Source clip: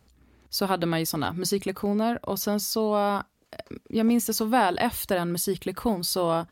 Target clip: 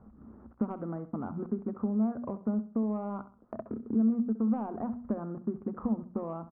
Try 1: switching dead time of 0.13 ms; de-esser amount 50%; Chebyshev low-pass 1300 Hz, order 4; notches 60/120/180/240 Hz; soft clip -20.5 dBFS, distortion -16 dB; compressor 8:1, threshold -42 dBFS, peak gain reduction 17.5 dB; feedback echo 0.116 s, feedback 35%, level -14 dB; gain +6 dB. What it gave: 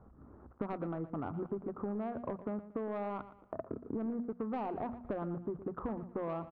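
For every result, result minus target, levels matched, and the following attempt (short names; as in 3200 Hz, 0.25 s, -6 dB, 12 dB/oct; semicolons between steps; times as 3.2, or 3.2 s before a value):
echo 50 ms late; soft clip: distortion +15 dB; 250 Hz band -2.5 dB
switching dead time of 0.13 ms; de-esser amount 50%; Chebyshev low-pass 1300 Hz, order 4; notches 60/120/180/240 Hz; soft clip -20.5 dBFS, distortion -16 dB; compressor 8:1, threshold -42 dBFS, peak gain reduction 17.5 dB; feedback echo 66 ms, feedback 35%, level -14 dB; gain +6 dB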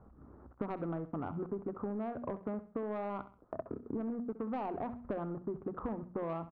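soft clip: distortion +15 dB; 250 Hz band -3.0 dB
switching dead time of 0.13 ms; de-esser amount 50%; Chebyshev low-pass 1300 Hz, order 4; notches 60/120/180/240 Hz; soft clip -11 dBFS, distortion -31 dB; compressor 8:1, threshold -42 dBFS, peak gain reduction 21 dB; feedback echo 66 ms, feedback 35%, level -14 dB; gain +6 dB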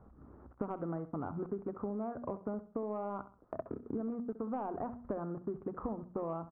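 250 Hz band -3.0 dB
switching dead time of 0.13 ms; de-esser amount 50%; Chebyshev low-pass 1300 Hz, order 4; notches 60/120/180/240 Hz; soft clip -11 dBFS, distortion -31 dB; compressor 8:1, threshold -42 dBFS, peak gain reduction 21 dB; bell 220 Hz +15 dB 0.28 oct; feedback echo 66 ms, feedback 35%, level -14 dB; gain +6 dB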